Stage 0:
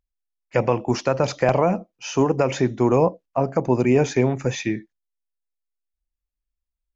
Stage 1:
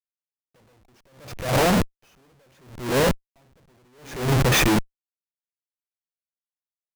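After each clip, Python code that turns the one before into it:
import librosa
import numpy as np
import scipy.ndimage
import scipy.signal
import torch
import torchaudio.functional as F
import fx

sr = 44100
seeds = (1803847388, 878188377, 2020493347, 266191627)

y = fx.schmitt(x, sr, flips_db=-33.5)
y = fx.attack_slew(y, sr, db_per_s=100.0)
y = y * 10.0 ** (5.0 / 20.0)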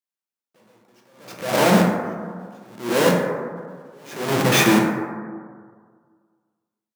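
y = scipy.signal.sosfilt(scipy.signal.butter(4, 160.0, 'highpass', fs=sr, output='sos'), x)
y = fx.rev_plate(y, sr, seeds[0], rt60_s=1.8, hf_ratio=0.3, predelay_ms=0, drr_db=-1.0)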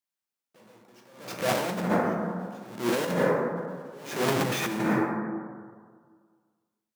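y = fx.over_compress(x, sr, threshold_db=-23.0, ratio=-1.0)
y = y * 10.0 ** (-3.0 / 20.0)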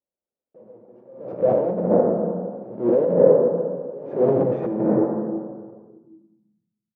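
y = fx.filter_sweep_lowpass(x, sr, from_hz=530.0, to_hz=160.0, start_s=5.78, end_s=6.69, q=3.1)
y = y * 10.0 ** (3.0 / 20.0)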